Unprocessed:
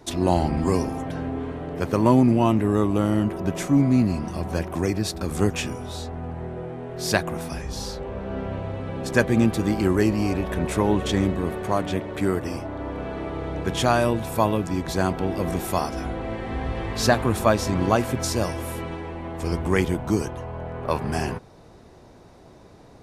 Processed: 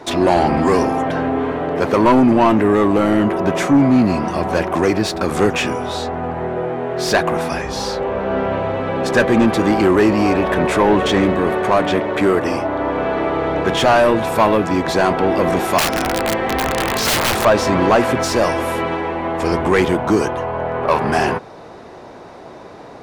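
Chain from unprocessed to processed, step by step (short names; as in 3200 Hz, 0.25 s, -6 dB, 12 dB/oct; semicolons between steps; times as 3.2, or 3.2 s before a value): overdrive pedal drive 23 dB, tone 1600 Hz, clips at -4 dBFS; 15.78–17.45 wrapped overs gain 13 dB; gain +1.5 dB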